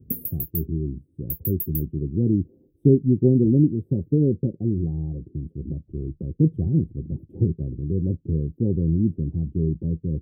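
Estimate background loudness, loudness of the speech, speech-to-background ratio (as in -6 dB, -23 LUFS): -30.0 LUFS, -24.0 LUFS, 6.0 dB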